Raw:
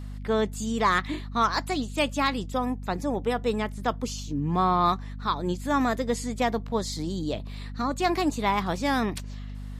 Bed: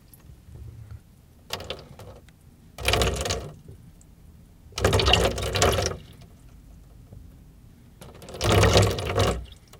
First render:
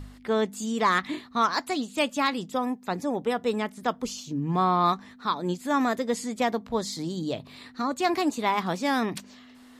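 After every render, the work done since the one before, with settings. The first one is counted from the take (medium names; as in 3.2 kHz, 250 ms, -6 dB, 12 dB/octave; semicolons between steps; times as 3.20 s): de-hum 50 Hz, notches 4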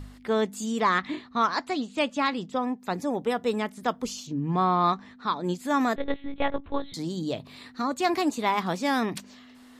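0.80–2.80 s: distance through air 83 m; 4.27–5.44 s: distance through air 74 m; 5.96–6.94 s: monotone LPC vocoder at 8 kHz 280 Hz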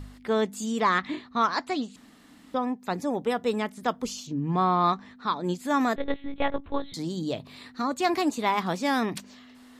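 1.96–2.54 s: room tone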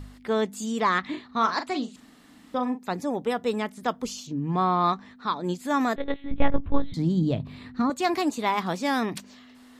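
1.25–2.83 s: doubling 40 ms -9 dB; 6.31–7.90 s: tone controls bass +14 dB, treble -10 dB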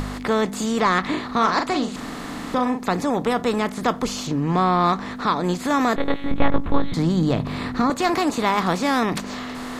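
spectral levelling over time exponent 0.6; in parallel at -1 dB: compression, threshold -31 dBFS, peak gain reduction 19 dB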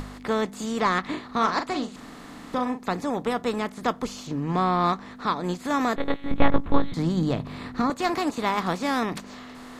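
upward expansion 1.5:1, over -31 dBFS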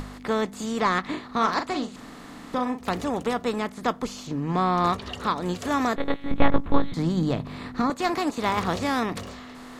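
add bed -18 dB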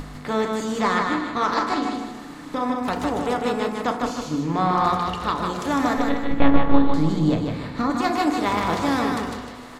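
feedback delay 153 ms, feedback 37%, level -4 dB; FDN reverb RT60 1 s, low-frequency decay 1×, high-frequency decay 0.4×, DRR 5 dB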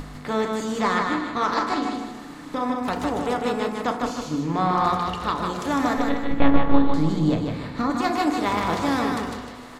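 trim -1 dB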